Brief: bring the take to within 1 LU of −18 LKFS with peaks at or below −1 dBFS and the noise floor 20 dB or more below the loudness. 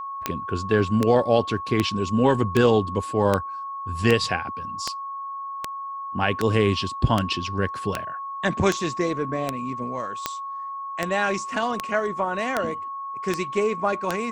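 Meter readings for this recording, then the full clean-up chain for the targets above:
number of clicks 19; interfering tone 1,100 Hz; level of the tone −30 dBFS; integrated loudness −24.5 LKFS; sample peak −4.5 dBFS; target loudness −18.0 LKFS
→ click removal
notch filter 1,100 Hz, Q 30
level +6.5 dB
brickwall limiter −1 dBFS

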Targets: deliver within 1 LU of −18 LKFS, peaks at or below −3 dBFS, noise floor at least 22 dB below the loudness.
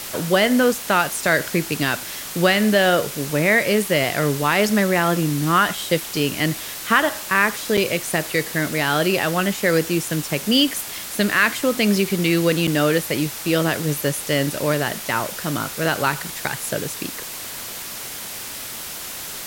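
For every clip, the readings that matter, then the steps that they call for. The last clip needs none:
number of dropouts 2; longest dropout 6.2 ms; background noise floor −32 dBFS; target noise floor −43 dBFS; integrated loudness −20.5 LKFS; sample peak −3.0 dBFS; target loudness −18.0 LKFS
→ repair the gap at 0:07.77/0:12.67, 6.2 ms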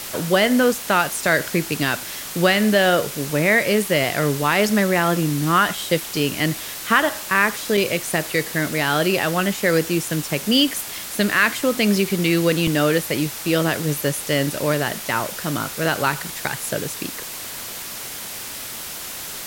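number of dropouts 0; background noise floor −32 dBFS; target noise floor −43 dBFS
→ broadband denoise 11 dB, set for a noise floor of −32 dBFS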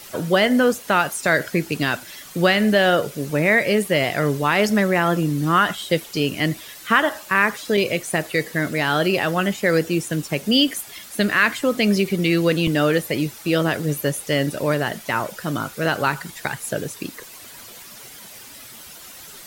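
background noise floor −41 dBFS; target noise floor −43 dBFS
→ broadband denoise 6 dB, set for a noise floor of −41 dBFS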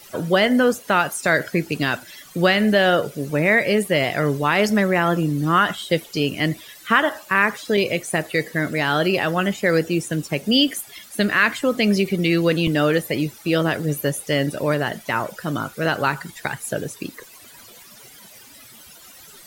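background noise floor −45 dBFS; integrated loudness −20.5 LKFS; sample peak −3.0 dBFS; target loudness −18.0 LKFS
→ level +2.5 dB
brickwall limiter −3 dBFS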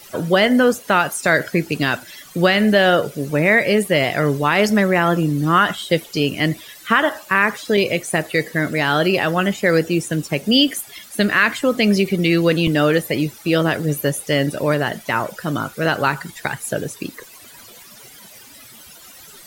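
integrated loudness −18.0 LKFS; sample peak −3.0 dBFS; background noise floor −43 dBFS

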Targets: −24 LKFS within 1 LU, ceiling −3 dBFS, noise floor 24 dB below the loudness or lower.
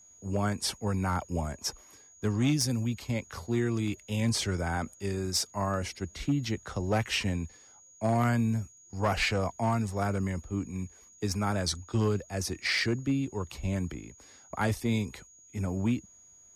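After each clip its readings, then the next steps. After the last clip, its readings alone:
share of clipped samples 0.5%; peaks flattened at −20.0 dBFS; interfering tone 6,700 Hz; level of the tone −54 dBFS; integrated loudness −31.0 LKFS; sample peak −20.0 dBFS; target loudness −24.0 LKFS
→ clipped peaks rebuilt −20 dBFS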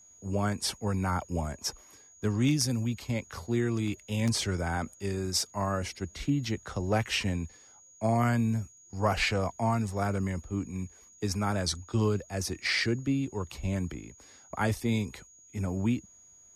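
share of clipped samples 0.0%; interfering tone 6,700 Hz; level of the tone −54 dBFS
→ notch filter 6,700 Hz, Q 30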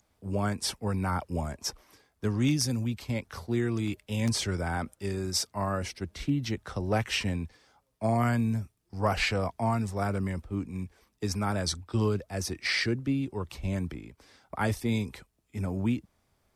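interfering tone none found; integrated loudness −30.5 LKFS; sample peak −12.0 dBFS; target loudness −24.0 LKFS
→ level +6.5 dB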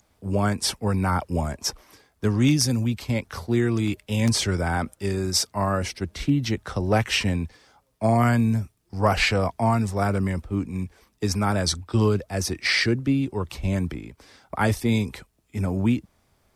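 integrated loudness −24.0 LKFS; sample peak −5.5 dBFS; background noise floor −67 dBFS

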